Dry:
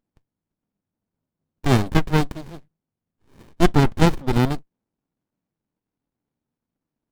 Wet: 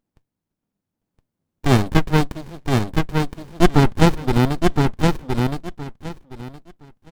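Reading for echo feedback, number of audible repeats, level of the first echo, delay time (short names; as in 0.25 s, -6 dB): 19%, 3, -3.5 dB, 1.017 s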